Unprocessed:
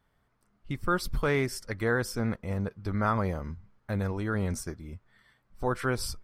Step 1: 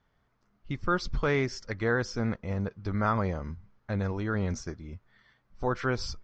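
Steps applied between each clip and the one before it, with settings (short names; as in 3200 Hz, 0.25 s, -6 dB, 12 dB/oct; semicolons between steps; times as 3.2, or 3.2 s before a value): steep low-pass 6900 Hz 72 dB/oct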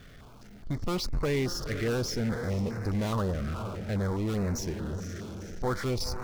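diffused feedback echo 0.487 s, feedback 43%, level -15 dB; power-law curve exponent 0.5; stepped notch 4.8 Hz 920–3200 Hz; gain -5 dB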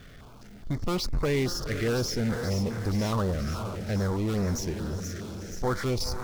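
thin delay 0.478 s, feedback 72%, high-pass 4600 Hz, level -6 dB; gain +2 dB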